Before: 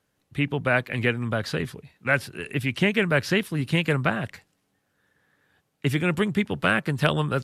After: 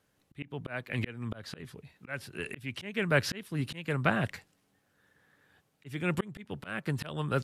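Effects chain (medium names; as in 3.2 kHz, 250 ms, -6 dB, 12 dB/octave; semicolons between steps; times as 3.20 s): slow attack 514 ms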